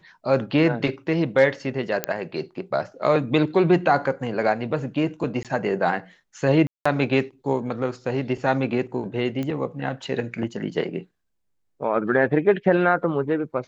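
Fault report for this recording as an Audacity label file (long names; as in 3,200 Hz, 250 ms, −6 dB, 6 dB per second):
2.040000	2.040000	click −6 dBFS
5.430000	5.450000	drop-out 17 ms
6.670000	6.860000	drop-out 185 ms
9.430000	9.430000	click −17 dBFS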